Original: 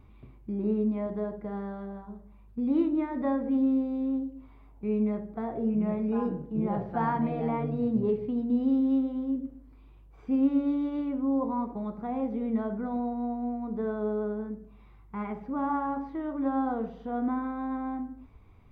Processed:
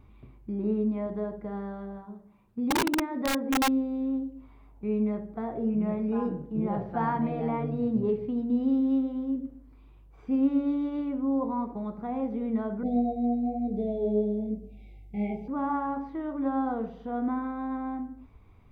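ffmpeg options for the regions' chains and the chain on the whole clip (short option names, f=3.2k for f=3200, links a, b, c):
-filter_complex "[0:a]asettb=1/sr,asplit=3[a][b][c];[a]atrim=end=1.964[d];[b]atrim=start=1.96:end=3.69,asetpts=PTS-STARTPTS,afade=t=in:d=0.004:c=qsin,afade=t=out:st=1.726:d=0.004:c=qsin,bandreject=f=50:t=h:w=6,bandreject=f=100:t=h:w=6,bandreject=f=150:t=h:w=6,aeval=exprs='(mod(10.6*val(0)+1,2)-1)/10.6':c=same[e];[c]atrim=start=3.686[f];[d][e]acrossfade=d=0.004:c1=hsin:c2=qsin[g];[g][f]acrossfade=d=0.004:c1=qsin:c2=hsin,asettb=1/sr,asplit=3[h][i][j];[h]atrim=end=12.834[k];[i]atrim=start=12.83:end=15.48,asetpts=PTS-STARTPTS,afade=t=in:d=0.004:c=qsin,afade=t=out:st=2.646:d=0.004:c=qsin,asuperstop=centerf=1300:order=20:qfactor=1,flanger=delay=19.5:depth=5.2:speed=1,acontrast=67[l];[j]atrim=start=15.476[m];[k][l]acrossfade=d=0.004:c1=hsin:c2=qsin[n];[n][m]acrossfade=d=0.004:c1=qsin:c2=hsin"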